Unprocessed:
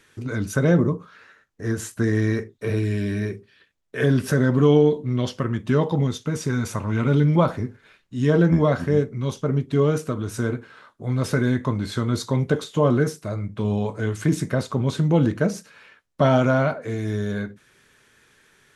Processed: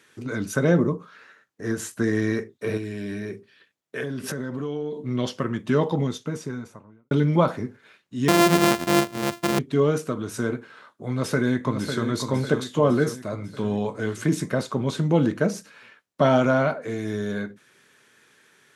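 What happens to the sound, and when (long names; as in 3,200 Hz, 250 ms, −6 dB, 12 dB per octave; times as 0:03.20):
0:02.77–0:05.05: downward compressor, threshold −25 dBFS
0:05.94–0:07.11: fade out and dull
0:08.28–0:09.59: samples sorted by size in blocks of 128 samples
0:11.10–0:12.05: delay throw 550 ms, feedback 55%, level −7 dB
whole clip: high-pass filter 160 Hz 12 dB per octave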